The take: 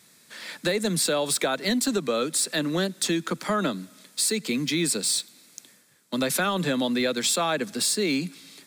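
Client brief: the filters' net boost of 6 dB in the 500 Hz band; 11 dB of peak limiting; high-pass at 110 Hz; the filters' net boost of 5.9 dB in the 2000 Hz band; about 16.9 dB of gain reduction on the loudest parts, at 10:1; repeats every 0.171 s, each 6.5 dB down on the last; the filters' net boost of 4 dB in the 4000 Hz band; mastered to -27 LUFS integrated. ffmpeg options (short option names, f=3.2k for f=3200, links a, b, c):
-af "highpass=110,equalizer=f=500:t=o:g=7,equalizer=f=2k:t=o:g=6.5,equalizer=f=4k:t=o:g=3,acompressor=threshold=-33dB:ratio=10,alimiter=level_in=4dB:limit=-24dB:level=0:latency=1,volume=-4dB,aecho=1:1:171|342|513|684|855|1026:0.473|0.222|0.105|0.0491|0.0231|0.0109,volume=9.5dB"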